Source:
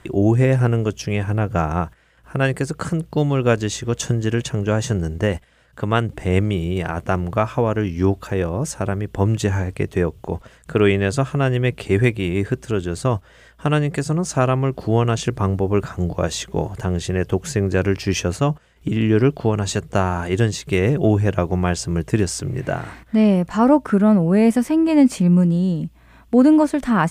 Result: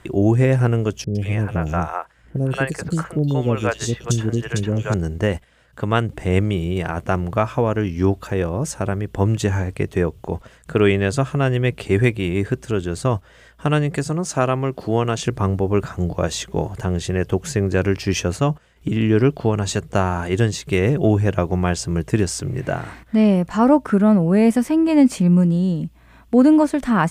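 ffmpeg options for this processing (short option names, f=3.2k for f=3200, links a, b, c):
-filter_complex "[0:a]asettb=1/sr,asplit=3[a][b][c];[a]atrim=end=1.044[d];[b]atrim=start=1.04:end=4.94,asetpts=PTS-STARTPTS,afade=t=in:d=0.004:c=qsin,afade=t=out:st=3.896:d=0.004:c=qsin,acrossover=split=500|3000[e][f][g];[g]adelay=110[h];[f]adelay=180[i];[e][i][h]amix=inputs=3:normalize=0,atrim=end_sample=171990[j];[c]atrim=start=4.936[k];[d][j]acrossfade=d=0.004:c1=hsin:c2=qsin[l];[l][k]acrossfade=d=0.004:c1=qsin:c2=hsin,asettb=1/sr,asplit=3[m][n][o];[m]atrim=end=14.094[p];[n]atrim=start=14.09:end=15.24,asetpts=PTS-STARTPTS,afade=t=in:d=0.004:c=qsin,afade=t=out:st=1.146:d=0.004:c=qsin,highpass=f=160:p=1[q];[o]atrim=start=15.236[r];[p][q]acrossfade=d=0.004:c1=hsin:c2=qsin[s];[s][r]acrossfade=d=0.004:c1=qsin:c2=hsin"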